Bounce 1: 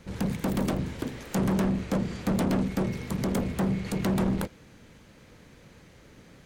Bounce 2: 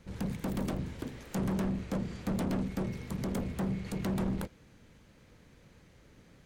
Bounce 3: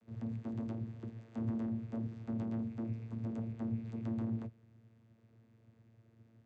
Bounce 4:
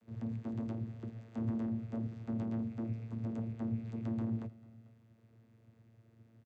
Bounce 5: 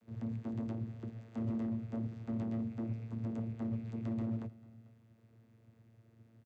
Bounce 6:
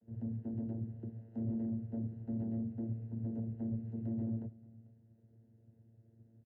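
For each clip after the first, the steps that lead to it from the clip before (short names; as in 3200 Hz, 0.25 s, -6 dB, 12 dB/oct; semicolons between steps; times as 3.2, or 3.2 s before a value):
low shelf 110 Hz +5 dB; gain -7.5 dB
vocoder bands 16, saw 113 Hz; gain -3 dB
echo 0.444 s -22.5 dB; gain +1 dB
hard clip -31 dBFS, distortion -21 dB
running mean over 38 samples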